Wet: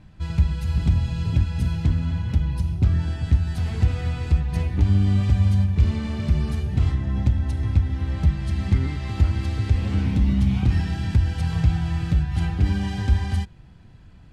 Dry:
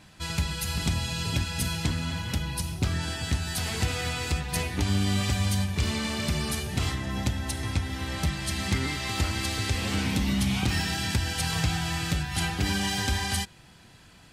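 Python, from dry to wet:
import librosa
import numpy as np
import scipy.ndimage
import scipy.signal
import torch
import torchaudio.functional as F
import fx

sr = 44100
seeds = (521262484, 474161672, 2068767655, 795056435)

y = fx.riaa(x, sr, side='playback')
y = y * librosa.db_to_amplitude(-4.5)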